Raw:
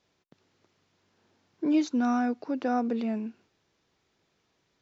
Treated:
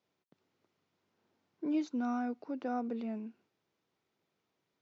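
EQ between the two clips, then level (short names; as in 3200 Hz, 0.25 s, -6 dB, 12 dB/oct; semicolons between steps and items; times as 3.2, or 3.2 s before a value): HPF 120 Hz 12 dB/oct; high shelf 3600 Hz -7 dB; notch 1700 Hz, Q 19; -8.0 dB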